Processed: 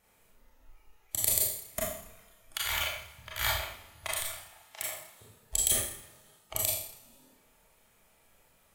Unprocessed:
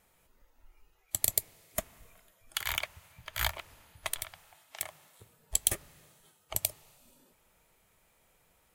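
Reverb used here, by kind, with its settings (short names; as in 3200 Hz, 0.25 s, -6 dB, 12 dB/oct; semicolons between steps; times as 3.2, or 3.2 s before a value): Schroeder reverb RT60 0.62 s, combs from 27 ms, DRR -5 dB; gain -3 dB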